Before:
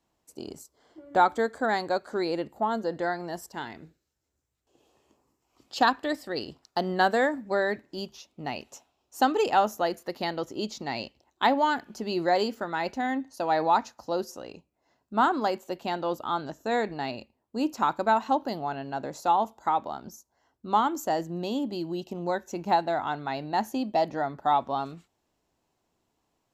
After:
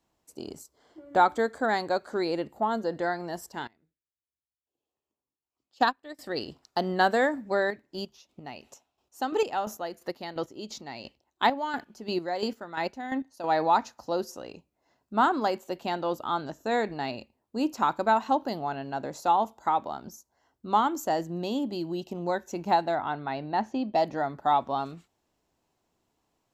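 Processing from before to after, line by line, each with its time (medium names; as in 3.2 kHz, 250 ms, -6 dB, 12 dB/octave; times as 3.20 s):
3.67–6.19 s: upward expansion 2.5:1, over -34 dBFS
7.60–13.44 s: square tremolo 2.9 Hz, depth 60%, duty 30%
22.95–23.95 s: distance through air 160 m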